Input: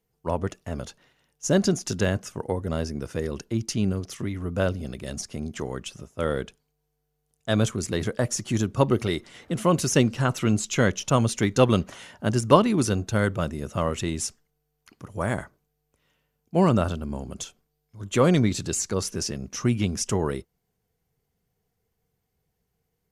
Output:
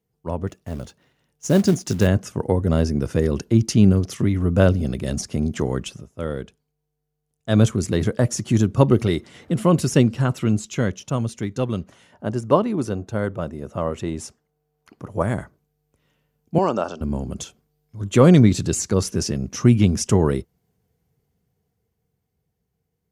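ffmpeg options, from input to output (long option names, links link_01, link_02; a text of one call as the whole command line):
ffmpeg -i in.wav -filter_complex "[0:a]asplit=3[link_01][link_02][link_03];[link_01]afade=type=out:start_time=0.47:duration=0.02[link_04];[link_02]acrusher=bits=4:mode=log:mix=0:aa=0.000001,afade=type=in:start_time=0.47:duration=0.02,afade=type=out:start_time=2.06:duration=0.02[link_05];[link_03]afade=type=in:start_time=2.06:duration=0.02[link_06];[link_04][link_05][link_06]amix=inputs=3:normalize=0,asettb=1/sr,asplit=3[link_07][link_08][link_09];[link_07]atrim=end=9.524[link_10];[link_08]atrim=start=9.52:end=10.46,asetpts=PTS-STARTPTS,afade=type=in:duration=0.004:curve=qsin,afade=type=out:start_time=0.936:duration=0.004:curve=qsin,bandreject=frequency=6200:width=12[link_11];[link_09]atrim=start=10.456[link_12];[link_10][link_11]acrossfade=duration=0.004:curve1=hsin:curve2=qsin[link_13];[link_13][link_12]acrossfade=duration=0.004:curve1=qsin:curve2=hsin,asettb=1/sr,asplit=3[link_14][link_15][link_16];[link_14]atrim=end=12.124[link_17];[link_15]atrim=start=12.12:end=15.23,asetpts=PTS-STARTPTS,afade=type=in:duration=0.004:curve=qsin,afade=type=out:start_time=3.106:duration=0.004:curve=qsin,equalizer=frequency=690:width=0.47:gain=9[link_18];[link_16]atrim=start=15.226[link_19];[link_17][link_18]acrossfade=duration=0.004:curve1=hsin:curve2=qsin[link_20];[link_20][link_19]acrossfade=duration=0.004:curve1=qsin:curve2=hsin,asettb=1/sr,asplit=3[link_21][link_22][link_23];[link_21]atrim=end=16.584[link_24];[link_22]atrim=start=16.58:end=17.01,asetpts=PTS-STARTPTS,afade=type=in:duration=0.004:curve=qsin,afade=type=out:start_time=0.426:duration=0.004:curve=qsin,highpass=450,equalizer=frequency=830:width_type=q:width=4:gain=4,equalizer=frequency=2000:width_type=q:width=4:gain=-9,equalizer=frequency=3800:width_type=q:width=4:gain=-8,equalizer=frequency=5600:width_type=q:width=4:gain=8,lowpass=frequency=6900:width=0.5412,lowpass=frequency=6900:width=1.3066[link_25];[link_23]atrim=start=17.006[link_26];[link_24][link_25]acrossfade=duration=0.004:curve1=hsin:curve2=qsin[link_27];[link_27][link_26]acrossfade=duration=0.004:curve1=qsin:curve2=hsin,asplit=3[link_28][link_29][link_30];[link_28]atrim=end=6.02,asetpts=PTS-STARTPTS,afade=type=out:start_time=5.84:duration=0.18:curve=qsin:silence=0.375837[link_31];[link_29]atrim=start=6.02:end=7.44,asetpts=PTS-STARTPTS,volume=-8.5dB[link_32];[link_30]atrim=start=7.44,asetpts=PTS-STARTPTS,afade=type=in:duration=0.18:curve=qsin:silence=0.375837[link_33];[link_31][link_32][link_33]concat=n=3:v=0:a=1,dynaudnorm=framelen=130:gausssize=31:maxgain=11.5dB,highpass=59,lowshelf=frequency=450:gain=8,volume=-4.5dB" out.wav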